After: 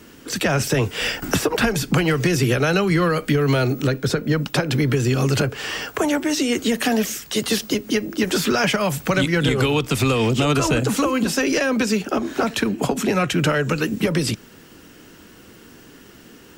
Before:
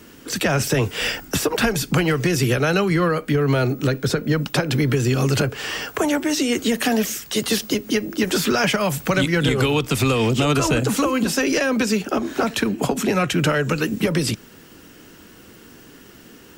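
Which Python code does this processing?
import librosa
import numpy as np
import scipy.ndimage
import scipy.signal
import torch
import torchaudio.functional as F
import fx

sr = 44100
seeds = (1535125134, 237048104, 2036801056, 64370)

y = fx.high_shelf(x, sr, hz=12000.0, db=-3.5)
y = fx.band_squash(y, sr, depth_pct=70, at=(1.22, 3.82))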